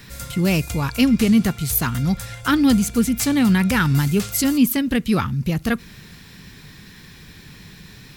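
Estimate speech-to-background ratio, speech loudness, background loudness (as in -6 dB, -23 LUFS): 14.0 dB, -19.5 LUFS, -33.5 LUFS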